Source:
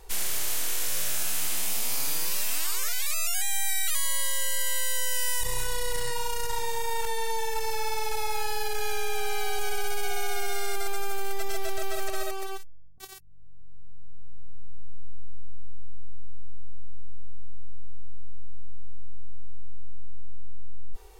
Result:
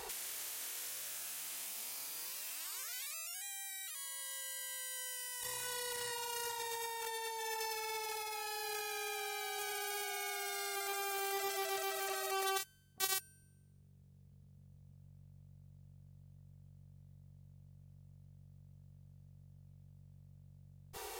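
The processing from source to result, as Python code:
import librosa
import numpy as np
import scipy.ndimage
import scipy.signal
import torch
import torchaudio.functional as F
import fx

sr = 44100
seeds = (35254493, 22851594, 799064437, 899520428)

y = scipy.signal.sosfilt(scipy.signal.butter(2, 100.0, 'highpass', fs=sr, output='sos'), x)
y = fx.low_shelf(y, sr, hz=400.0, db=-9.5)
y = fx.over_compress(y, sr, threshold_db=-43.0, ratio=-1.0)
y = fx.comb_fb(y, sr, f0_hz=220.0, decay_s=1.1, harmonics='all', damping=0.0, mix_pct=40)
y = y * librosa.db_to_amplitude(5.0)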